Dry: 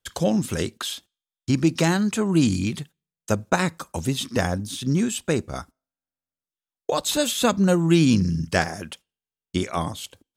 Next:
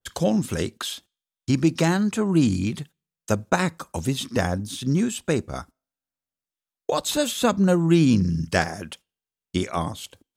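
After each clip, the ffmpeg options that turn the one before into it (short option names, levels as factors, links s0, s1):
-af "adynamicequalizer=threshold=0.0126:dfrequency=1900:dqfactor=0.7:tfrequency=1900:tqfactor=0.7:attack=5:release=100:ratio=0.375:range=2.5:mode=cutabove:tftype=highshelf"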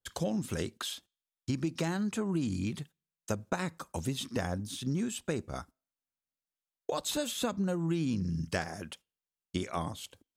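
-af "acompressor=threshold=0.0891:ratio=6,volume=0.447"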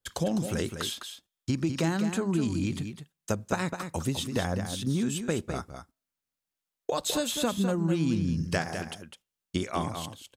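-af "aecho=1:1:205:0.398,volume=1.58"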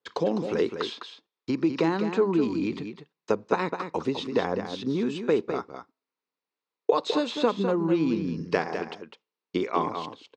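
-af "highpass=260,equalizer=f=310:t=q:w=4:g=3,equalizer=f=440:t=q:w=4:g=9,equalizer=f=630:t=q:w=4:g=-4,equalizer=f=1000:t=q:w=4:g=6,equalizer=f=1600:t=q:w=4:g=-4,equalizer=f=3200:t=q:w=4:g=-7,lowpass=f=4300:w=0.5412,lowpass=f=4300:w=1.3066,volume=1.5"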